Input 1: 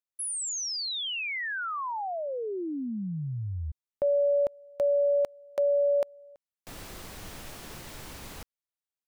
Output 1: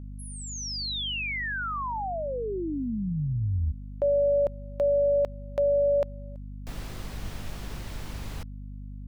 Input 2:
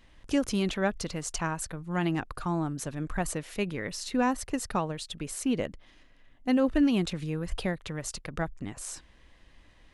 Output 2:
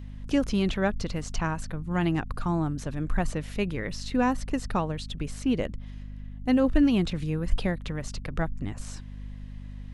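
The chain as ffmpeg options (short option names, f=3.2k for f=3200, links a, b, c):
-filter_complex "[0:a]acrossover=split=5800[a][b];[b]acompressor=threshold=-52dB:ratio=4:attack=1:release=60[c];[a][c]amix=inputs=2:normalize=0,lowshelf=f=100:g=10,aeval=exprs='val(0)+0.0112*(sin(2*PI*50*n/s)+sin(2*PI*2*50*n/s)/2+sin(2*PI*3*50*n/s)/3+sin(2*PI*4*50*n/s)/4+sin(2*PI*5*50*n/s)/5)':c=same,volume=1dB"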